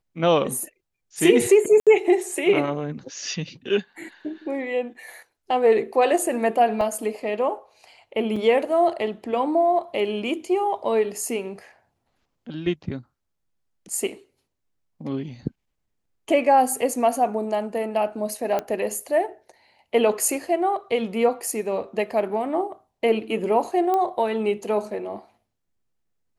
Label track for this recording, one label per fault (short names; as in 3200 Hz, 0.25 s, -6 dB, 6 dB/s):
1.800000	1.870000	gap 67 ms
6.810000	6.810000	gap 2.5 ms
8.360000	8.360000	gap 4.2 ms
18.590000	18.590000	pop -13 dBFS
23.940000	23.940000	pop -13 dBFS